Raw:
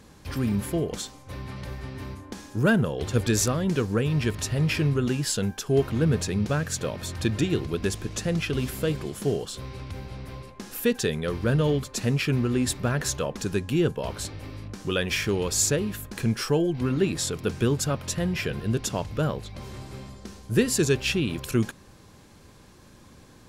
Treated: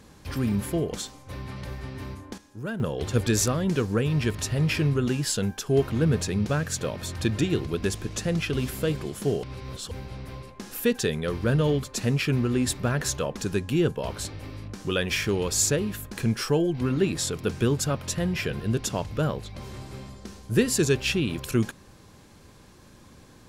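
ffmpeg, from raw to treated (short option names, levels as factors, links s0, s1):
-filter_complex "[0:a]asplit=5[s0][s1][s2][s3][s4];[s0]atrim=end=2.38,asetpts=PTS-STARTPTS,afade=t=out:st=2.21:d=0.17:c=log:silence=0.251189[s5];[s1]atrim=start=2.38:end=2.8,asetpts=PTS-STARTPTS,volume=0.251[s6];[s2]atrim=start=2.8:end=9.432,asetpts=PTS-STARTPTS,afade=t=in:d=0.17:c=log:silence=0.251189[s7];[s3]atrim=start=9.428:end=9.912,asetpts=PTS-STARTPTS,areverse[s8];[s4]atrim=start=9.908[s9];[s5][s6][s7]concat=n=3:v=0:a=1[s10];[s10][s8]acrossfade=d=0.004:c1=hsin:c2=hsin[s11];[s11][s9]acrossfade=d=0.004:c1=hsin:c2=hsin"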